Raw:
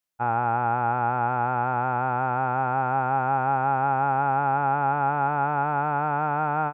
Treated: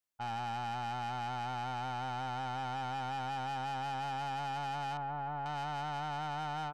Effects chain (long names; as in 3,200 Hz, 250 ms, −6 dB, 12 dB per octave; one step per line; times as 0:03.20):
soft clipping −29.5 dBFS, distortion −7 dB
0:04.97–0:05.46: low-pass filter 1,400 Hz 12 dB per octave
level −6 dB